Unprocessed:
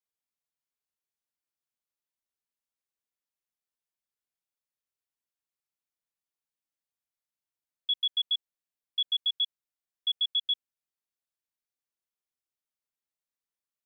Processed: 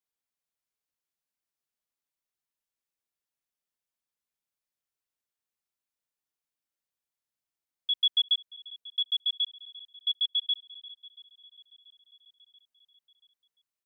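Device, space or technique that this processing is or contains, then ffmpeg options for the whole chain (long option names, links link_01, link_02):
ducked delay: -filter_complex "[0:a]asettb=1/sr,asplit=3[link_01][link_02][link_03];[link_01]atrim=end=7.944[link_04];[link_02]atrim=start=7.94:end=8.34,asetpts=PTS-STARTPTS,afade=type=in:duration=0.004:curve=qsin,afade=type=out:start_time=0.396:duration=0.004:curve=qsin,equalizer=frequency=3400:width_type=o:width=0.21:gain=4[link_05];[link_03]atrim=start=8.336[link_06];[link_04][link_05]acrossfade=duration=0.004:curve1=hsin:curve2=qsin[link_07];[link_07][link_06]acrossfade=duration=0.004:curve1=qsin:curve2=hsin,aecho=1:1:683|1366|2049|2732:0.0944|0.051|0.0275|0.0149,asplit=3[link_08][link_09][link_10];[link_09]adelay=347,volume=-8.5dB[link_11];[link_10]apad=whole_len=746618[link_12];[link_11][link_12]sidechaincompress=threshold=-39dB:ratio=8:attack=16:release=1040[link_13];[link_08][link_13]amix=inputs=2:normalize=0"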